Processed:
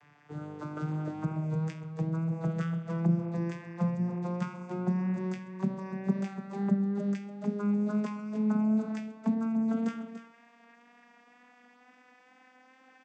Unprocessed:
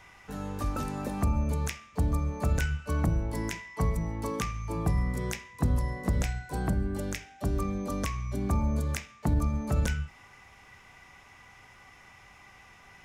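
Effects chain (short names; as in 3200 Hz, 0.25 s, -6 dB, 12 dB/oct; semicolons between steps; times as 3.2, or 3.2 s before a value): vocoder on a gliding note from D3, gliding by +10 st; wow and flutter 16 cents; echo 0.29 s -11 dB; gain +2.5 dB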